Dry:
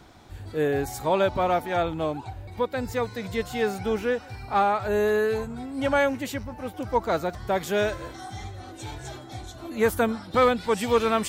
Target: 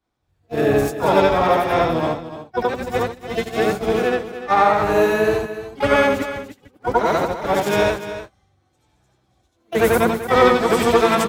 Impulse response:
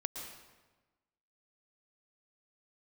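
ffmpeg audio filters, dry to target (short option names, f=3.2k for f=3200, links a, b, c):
-filter_complex "[0:a]afftfilt=real='re':imag='-im':win_size=8192:overlap=0.75,agate=range=-33dB:threshold=-32dB:ratio=16:detection=peak,acontrast=56,asplit=3[a][b][c];[b]asetrate=33038,aresample=44100,atempo=1.33484,volume=-10dB[d];[c]asetrate=66075,aresample=44100,atempo=0.66742,volume=-8dB[e];[a][d][e]amix=inputs=3:normalize=0,asplit=2[f][g];[g]aecho=0:1:295:0.251[h];[f][h]amix=inputs=2:normalize=0,volume=4.5dB"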